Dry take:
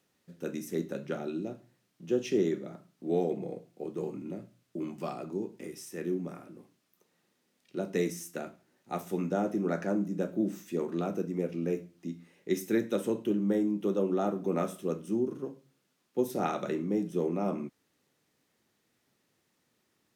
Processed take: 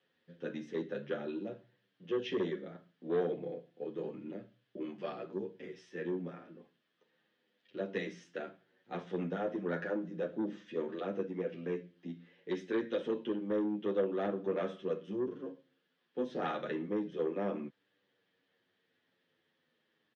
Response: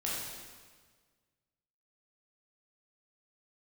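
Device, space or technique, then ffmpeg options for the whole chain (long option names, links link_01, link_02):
barber-pole flanger into a guitar amplifier: -filter_complex "[0:a]asplit=2[link_01][link_02];[link_02]adelay=9.1,afreqshift=-0.31[link_03];[link_01][link_03]amix=inputs=2:normalize=1,asoftclip=type=tanh:threshold=-26dB,highpass=110,equalizer=frequency=490:width_type=q:width=4:gain=8,equalizer=frequency=1700:width_type=q:width=4:gain=10,equalizer=frequency=3200:width_type=q:width=4:gain=9,lowpass=frequency=4400:width=0.5412,lowpass=frequency=4400:width=1.3066,volume=-2.5dB"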